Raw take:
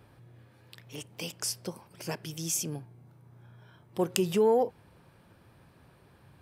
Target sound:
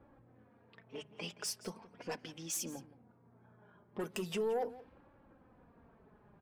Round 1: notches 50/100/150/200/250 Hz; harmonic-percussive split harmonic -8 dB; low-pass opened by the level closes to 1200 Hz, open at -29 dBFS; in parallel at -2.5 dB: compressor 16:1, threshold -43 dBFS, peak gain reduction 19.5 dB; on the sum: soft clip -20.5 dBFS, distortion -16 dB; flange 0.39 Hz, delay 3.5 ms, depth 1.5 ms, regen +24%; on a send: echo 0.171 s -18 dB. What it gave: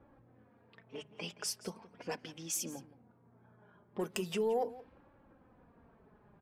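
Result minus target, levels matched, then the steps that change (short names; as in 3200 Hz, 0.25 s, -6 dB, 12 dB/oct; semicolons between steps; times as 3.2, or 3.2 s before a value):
soft clip: distortion -5 dB
change: soft clip -27.5 dBFS, distortion -11 dB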